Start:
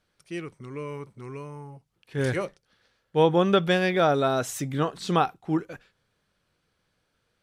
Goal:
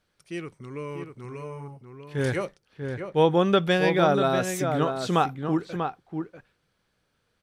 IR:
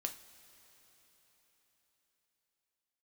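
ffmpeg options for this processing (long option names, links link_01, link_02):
-filter_complex "[0:a]asplit=2[link_01][link_02];[link_02]adelay=641.4,volume=-6dB,highshelf=frequency=4000:gain=-14.4[link_03];[link_01][link_03]amix=inputs=2:normalize=0"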